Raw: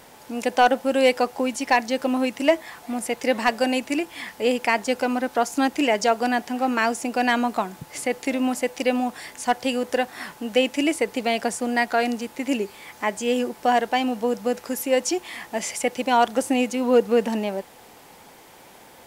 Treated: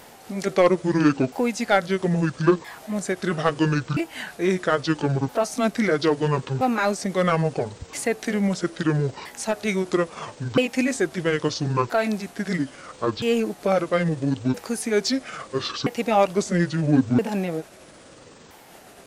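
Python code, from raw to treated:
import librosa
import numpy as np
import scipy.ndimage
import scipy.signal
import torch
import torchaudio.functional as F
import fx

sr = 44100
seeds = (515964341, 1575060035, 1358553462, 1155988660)

p1 = fx.pitch_ramps(x, sr, semitones=-11.5, every_ms=1322)
p2 = np.clip(p1, -10.0 ** (-23.5 / 20.0), 10.0 ** (-23.5 / 20.0))
y = p1 + (p2 * 10.0 ** (-11.5 / 20.0))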